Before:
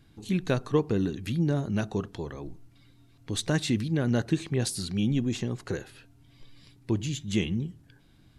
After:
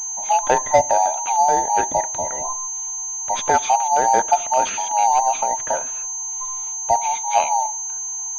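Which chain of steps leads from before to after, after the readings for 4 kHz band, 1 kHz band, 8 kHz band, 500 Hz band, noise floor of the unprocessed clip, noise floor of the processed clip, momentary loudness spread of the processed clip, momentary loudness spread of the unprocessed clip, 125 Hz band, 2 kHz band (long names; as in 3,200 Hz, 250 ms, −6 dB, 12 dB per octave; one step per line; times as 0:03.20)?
+2.0 dB, +28.5 dB, +22.5 dB, +9.5 dB, −58 dBFS, −28 dBFS, 8 LU, 10 LU, below −15 dB, +9.0 dB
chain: frequency inversion band by band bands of 1,000 Hz
switching amplifier with a slow clock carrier 6,300 Hz
level +9 dB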